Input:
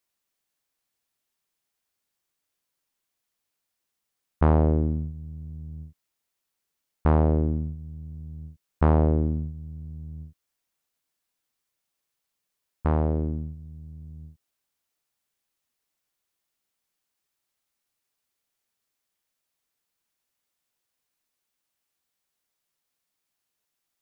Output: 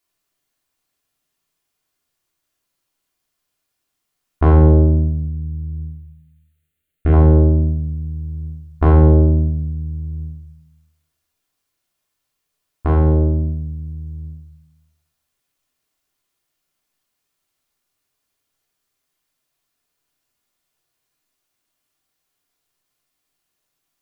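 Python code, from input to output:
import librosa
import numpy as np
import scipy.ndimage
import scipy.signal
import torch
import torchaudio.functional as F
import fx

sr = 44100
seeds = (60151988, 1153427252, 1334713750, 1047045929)

p1 = fx.fixed_phaser(x, sr, hz=2300.0, stages=4, at=(5.25, 7.13))
p2 = p1 + fx.echo_single(p1, sr, ms=206, db=-21.0, dry=0)
p3 = fx.room_shoebox(p2, sr, seeds[0], volume_m3=860.0, walls='furnished', distance_m=3.2)
y = F.gain(torch.from_numpy(p3), 2.5).numpy()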